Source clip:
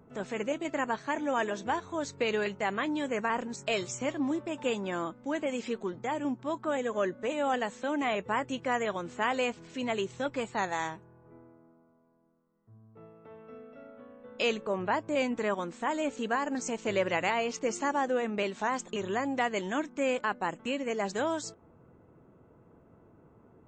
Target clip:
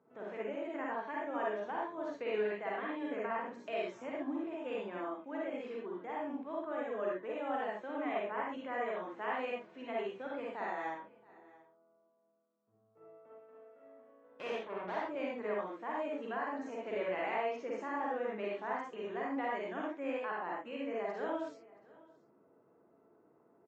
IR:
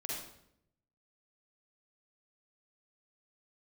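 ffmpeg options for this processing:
-filter_complex "[0:a]asettb=1/sr,asplit=3[link_01][link_02][link_03];[link_01]atrim=end=13.334[link_04];[link_02]atrim=start=13.33:end=15,asetpts=PTS-STARTPTS,afade=type=in:duration=0.004:curve=qsin,afade=type=out:start_time=1.666:duration=0.004:curve=qsin,aeval=exprs='0.158*(cos(1*acos(clip(val(0)/0.158,-1,1)))-cos(1*PI/2))+0.0224*(cos(3*acos(clip(val(0)/0.158,-1,1)))-cos(3*PI/2))+0.0251*(cos(8*acos(clip(val(0)/0.158,-1,1)))-cos(8*PI/2))':channel_layout=same[link_05];[link_03]atrim=start=14.996[link_06];[link_04][link_05]acrossfade=duration=0.004:curve1=hsin:curve2=qsin[link_07];[link_07][link_06]acrossfade=duration=0.004:curve1=qsin:curve2=hsin,highpass=280,lowpass=2100,aecho=1:1:676:0.075[link_08];[1:a]atrim=start_sample=2205,atrim=end_sample=6174[link_09];[link_08][link_09]afir=irnorm=-1:irlink=0,volume=-6.5dB"

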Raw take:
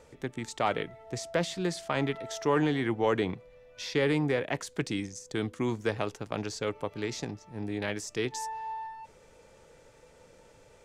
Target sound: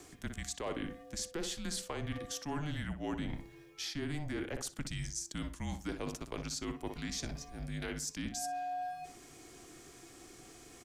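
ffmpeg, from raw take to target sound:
ffmpeg -i in.wav -filter_complex "[0:a]lowshelf=frequency=170:gain=-4,acrossover=split=930[link_01][link_02];[link_02]alimiter=level_in=2.5dB:limit=-24dB:level=0:latency=1:release=286,volume=-2.5dB[link_03];[link_01][link_03]amix=inputs=2:normalize=0,asplit=2[link_04][link_05];[link_05]adelay=61,lowpass=frequency=2300:poles=1,volume=-9.5dB,asplit=2[link_06][link_07];[link_07]adelay=61,lowpass=frequency=2300:poles=1,volume=0.31,asplit=2[link_08][link_09];[link_09]adelay=61,lowpass=frequency=2300:poles=1,volume=0.31[link_10];[link_04][link_06][link_08][link_10]amix=inputs=4:normalize=0,afreqshift=-160,crystalizer=i=2.5:c=0,areverse,acompressor=threshold=-38dB:ratio=4,areverse,volume=1dB" out.wav

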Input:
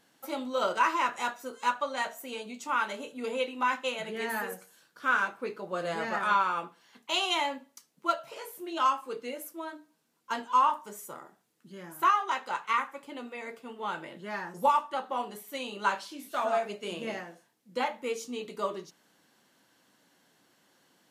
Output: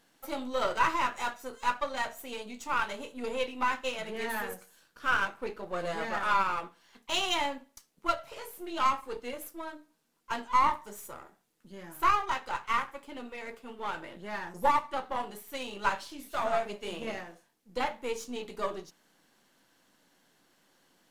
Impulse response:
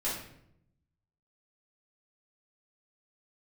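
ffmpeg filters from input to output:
-af "aeval=exprs='if(lt(val(0),0),0.447*val(0),val(0))':channel_layout=same,volume=1.5dB"

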